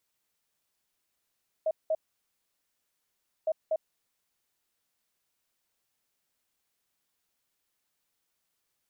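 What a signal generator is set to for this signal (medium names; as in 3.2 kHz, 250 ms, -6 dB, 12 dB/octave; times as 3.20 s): beep pattern sine 634 Hz, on 0.05 s, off 0.19 s, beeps 2, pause 1.52 s, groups 2, -24 dBFS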